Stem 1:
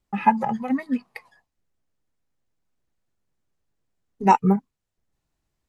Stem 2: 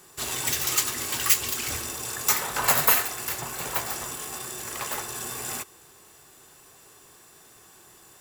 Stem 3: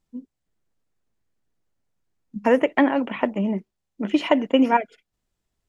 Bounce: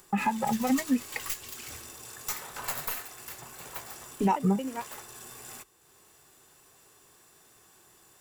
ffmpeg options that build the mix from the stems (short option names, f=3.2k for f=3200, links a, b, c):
-filter_complex "[0:a]acompressor=threshold=-24dB:ratio=2,asoftclip=type=tanh:threshold=-10dB,volume=3dB,asplit=2[a][b];[1:a]acompressor=mode=upward:threshold=-39dB:ratio=2.5,aeval=exprs='(tanh(2.24*val(0)+0.8)-tanh(0.8))/2.24':c=same,volume=-7dB[c];[2:a]adelay=50,volume=-16.5dB[d];[b]apad=whole_len=253113[e];[d][e]sidechaingate=range=-33dB:threshold=-53dB:ratio=16:detection=peak[f];[a][c][f]amix=inputs=3:normalize=0,alimiter=limit=-16.5dB:level=0:latency=1:release=304"